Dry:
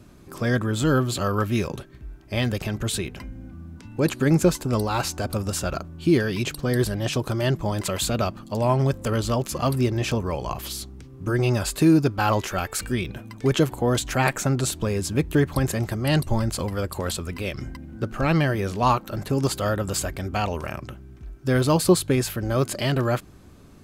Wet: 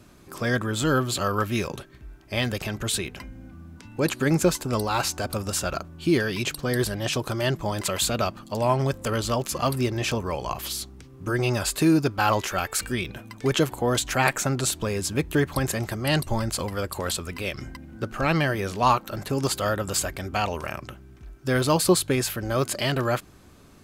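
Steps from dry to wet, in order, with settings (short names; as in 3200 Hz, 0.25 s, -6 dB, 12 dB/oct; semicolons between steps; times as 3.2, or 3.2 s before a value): low shelf 480 Hz -6.5 dB; gain +2 dB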